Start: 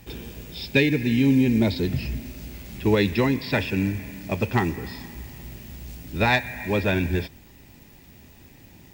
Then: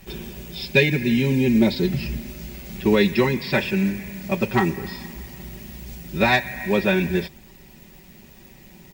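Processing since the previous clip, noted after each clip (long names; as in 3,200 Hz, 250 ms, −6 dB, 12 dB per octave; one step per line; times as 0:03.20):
comb filter 5.3 ms, depth 98%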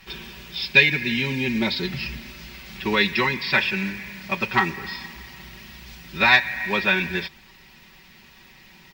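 flat-topped bell 2,200 Hz +12.5 dB 2.9 octaves
level −7.5 dB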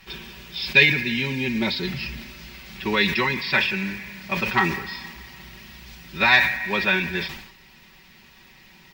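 level that may fall only so fast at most 73 dB per second
level −1 dB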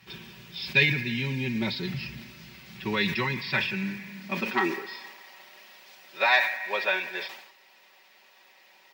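high-pass filter sweep 110 Hz → 570 Hz, 0:03.66–0:05.22
level −6.5 dB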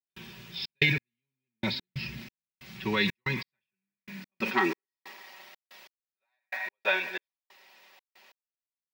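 gate pattern ".xxx.x....x.xx." 92 BPM −60 dB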